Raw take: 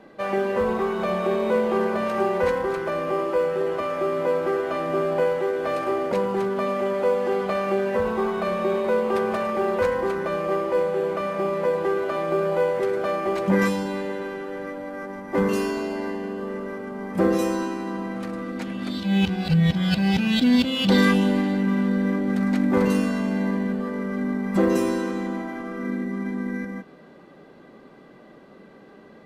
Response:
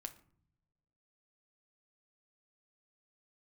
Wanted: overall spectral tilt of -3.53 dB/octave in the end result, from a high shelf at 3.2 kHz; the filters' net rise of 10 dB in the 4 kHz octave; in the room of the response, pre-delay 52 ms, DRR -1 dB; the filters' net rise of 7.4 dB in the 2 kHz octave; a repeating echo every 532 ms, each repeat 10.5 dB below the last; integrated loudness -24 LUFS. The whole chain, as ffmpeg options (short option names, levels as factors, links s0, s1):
-filter_complex "[0:a]equalizer=f=2000:t=o:g=6,highshelf=f=3200:g=6,equalizer=f=4000:t=o:g=6.5,aecho=1:1:532|1064|1596:0.299|0.0896|0.0269,asplit=2[s0][s1];[1:a]atrim=start_sample=2205,adelay=52[s2];[s1][s2]afir=irnorm=-1:irlink=0,volume=1.78[s3];[s0][s3]amix=inputs=2:normalize=0,volume=0.531"